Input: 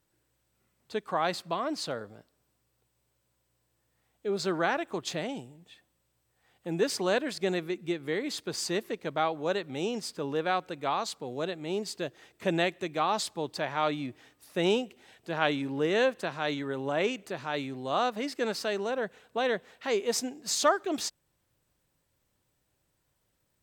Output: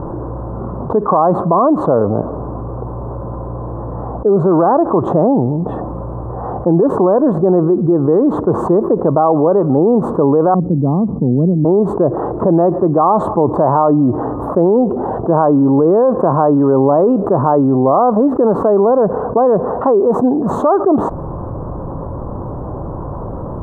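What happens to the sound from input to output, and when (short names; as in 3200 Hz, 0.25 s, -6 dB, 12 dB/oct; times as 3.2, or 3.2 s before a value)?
10.54–11.65 synth low-pass 200 Hz, resonance Q 1.9
whole clip: elliptic low-pass 1100 Hz, stop band 50 dB; maximiser +25.5 dB; fast leveller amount 70%; gain -4.5 dB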